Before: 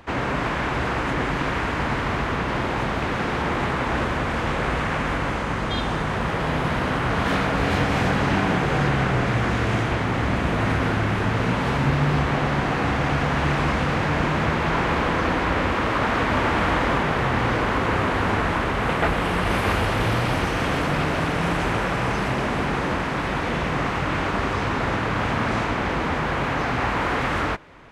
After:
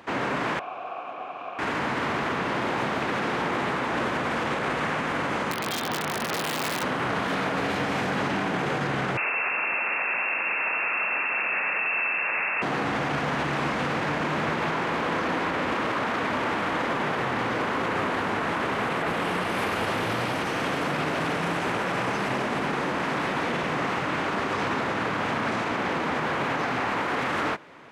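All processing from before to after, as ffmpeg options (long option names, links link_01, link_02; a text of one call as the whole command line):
ffmpeg -i in.wav -filter_complex "[0:a]asettb=1/sr,asplit=3[link_01][link_02][link_03];[link_01]atrim=end=0.594[link_04];[link_02]atrim=start=0.59:end=1.59,asetpts=PTS-STARTPTS,afade=type=in:duration=0.004:curve=qsin,afade=type=out:start_time=0.996:duration=0.004:curve=qsin,asplit=3[link_05][link_06][link_07];[link_05]bandpass=frequency=730:width_type=q:width=8,volume=0dB[link_08];[link_06]bandpass=frequency=1090:width_type=q:width=8,volume=-6dB[link_09];[link_07]bandpass=frequency=2440:width_type=q:width=8,volume=-9dB[link_10];[link_08][link_09][link_10]amix=inputs=3:normalize=0,aeval=exprs='val(0)+0.00126*(sin(2*PI*50*n/s)+sin(2*PI*2*50*n/s)/2+sin(2*PI*3*50*n/s)/3+sin(2*PI*4*50*n/s)/4+sin(2*PI*5*50*n/s)/5)':channel_layout=same,bandreject=frequency=4600:width=28[link_11];[link_03]atrim=start=1.586[link_12];[link_04][link_11]acrossfade=duration=0.004:curve1=hsin:curve2=qsin[link_13];[link_13][link_12]acrossfade=duration=0.004:curve1=qsin:curve2=hsin,asettb=1/sr,asplit=3[link_14][link_15][link_16];[link_14]atrim=end=5.514[link_17];[link_15]atrim=start=5.51:end=6.83,asetpts=PTS-STARTPTS,afade=type=in:duration=0.004:curve=qsin,afade=type=out:start_time=1.316:duration=0.004:curve=qsin,lowpass=frequency=4700:width=0.5412,lowpass=frequency=4700:width=1.3066,lowshelf=frequency=110:gain=-3.5,aeval=exprs='(mod(7.5*val(0)+1,2)-1)/7.5':channel_layout=same[link_18];[link_16]atrim=start=6.826[link_19];[link_17][link_18]acrossfade=duration=0.004:curve1=hsin:curve2=qsin[link_20];[link_20][link_19]acrossfade=duration=0.004:curve1=qsin:curve2=hsin,asettb=1/sr,asplit=3[link_21][link_22][link_23];[link_21]atrim=end=9.174[link_24];[link_22]atrim=start=9.17:end=12.62,asetpts=PTS-STARTPTS,afade=type=in:duration=0.004:curve=qsin,afade=type=out:start_time=3.446:duration=0.004:curve=qsin,highshelf=frequency=2000:gain=8,lowpass=frequency=2400:width_type=q:width=0.5098,lowpass=frequency=2400:width_type=q:width=0.6013,lowpass=frequency=2400:width_type=q:width=0.9,lowpass=frequency=2400:width_type=q:width=2.563,afreqshift=-2800[link_25];[link_23]atrim=start=12.616[link_26];[link_24][link_25]acrossfade=duration=0.004:curve1=hsin:curve2=qsin[link_27];[link_27][link_26]acrossfade=duration=0.004:curve1=qsin:curve2=hsin,highpass=180,alimiter=limit=-18.5dB:level=0:latency=1:release=29" out.wav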